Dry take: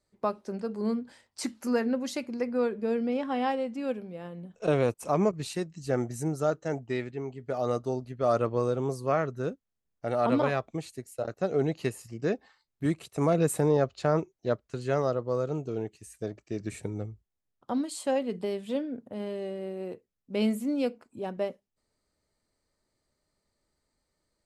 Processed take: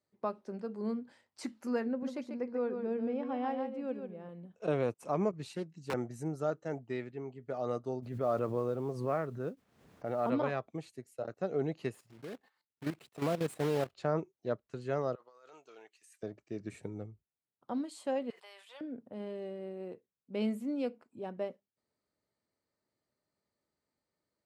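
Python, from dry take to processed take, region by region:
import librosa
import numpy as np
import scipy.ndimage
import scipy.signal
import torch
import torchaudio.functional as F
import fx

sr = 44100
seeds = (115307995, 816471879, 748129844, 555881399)

y = fx.chain(x, sr, fx.high_shelf(hz=2000.0, db=-8.5),
    fx.echo_single(ms=142, db=-6.5), at=(1.88, 4.29))
y = fx.chain(y, sr, fx.overflow_wrap(gain_db=18.0),
    fx.notch_comb(f0_hz=610.0),
    fx.doppler_dist(depth_ms=0.19), at=(5.52, 5.94))
y = fx.chain(y, sr, fx.high_shelf(hz=3200.0, db=-9.0),
    fx.mod_noise(seeds[0], snr_db=30),
    fx.pre_swell(db_per_s=64.0), at=(8.02, 10.3))
y = fx.chain(y, sr, fx.block_float(bits=3),
    fx.peak_eq(hz=6200.0, db=-3.0, octaves=0.38),
    fx.level_steps(step_db=12), at=(11.94, 13.95))
y = fx.chain(y, sr, fx.highpass(hz=1300.0, slope=12),
    fx.over_compress(threshold_db=-50.0, ratio=-1.0), at=(15.15, 16.23))
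y = fx.chain(y, sr, fx.highpass(hz=900.0, slope=24),
    fx.high_shelf(hz=9500.0, db=4.0),
    fx.sustainer(db_per_s=46.0), at=(18.3, 18.81))
y = scipy.signal.sosfilt(scipy.signal.butter(2, 110.0, 'highpass', fs=sr, output='sos'), y)
y = fx.high_shelf(y, sr, hz=4600.0, db=-9.5)
y = F.gain(torch.from_numpy(y), -6.0).numpy()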